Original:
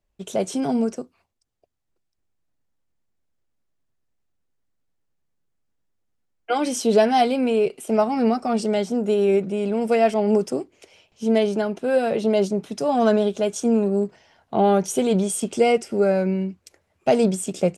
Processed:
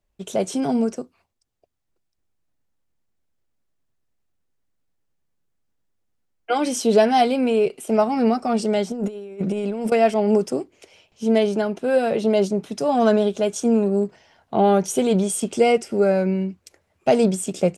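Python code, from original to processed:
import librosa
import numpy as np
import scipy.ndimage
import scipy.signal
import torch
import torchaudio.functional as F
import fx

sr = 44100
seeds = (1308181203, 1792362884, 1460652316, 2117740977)

y = fx.over_compress(x, sr, threshold_db=-26.0, ratio=-0.5, at=(8.91, 9.92))
y = F.gain(torch.from_numpy(y), 1.0).numpy()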